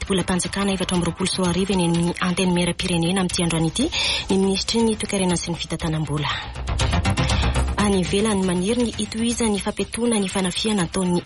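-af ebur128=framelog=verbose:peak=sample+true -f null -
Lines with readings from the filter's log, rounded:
Integrated loudness:
  I:         -21.4 LUFS
  Threshold: -31.4 LUFS
Loudness range:
  LRA:         1.6 LU
  Threshold: -41.3 LUFS
  LRA low:   -22.1 LUFS
  LRA high:  -20.5 LUFS
Sample peak:
  Peak:       -9.5 dBFS
True peak:
  Peak:       -9.5 dBFS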